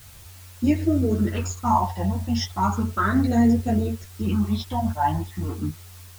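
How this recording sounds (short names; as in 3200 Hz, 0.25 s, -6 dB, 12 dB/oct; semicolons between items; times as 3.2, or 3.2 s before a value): phasing stages 12, 0.35 Hz, lowest notch 400–1100 Hz; a quantiser's noise floor 8-bit, dither triangular; a shimmering, thickened sound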